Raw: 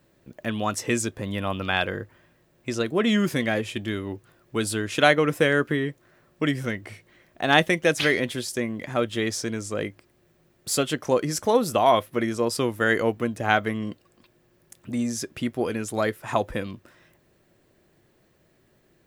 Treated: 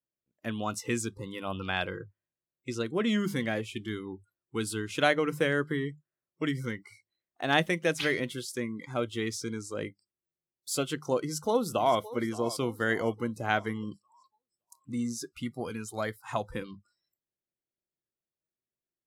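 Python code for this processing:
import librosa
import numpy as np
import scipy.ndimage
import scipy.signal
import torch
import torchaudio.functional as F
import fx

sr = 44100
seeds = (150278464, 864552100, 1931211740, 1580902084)

y = fx.echo_throw(x, sr, start_s=11.19, length_s=0.81, ms=570, feedback_pct=55, wet_db=-15.5)
y = fx.peak_eq(y, sr, hz=360.0, db=-6.0, octaves=0.89, at=(15.29, 16.52))
y = fx.hum_notches(y, sr, base_hz=50, count=4)
y = fx.noise_reduce_blind(y, sr, reduce_db=30)
y = fx.dynamic_eq(y, sr, hz=140.0, q=0.89, threshold_db=-41.0, ratio=4.0, max_db=3)
y = y * librosa.db_to_amplitude(-7.0)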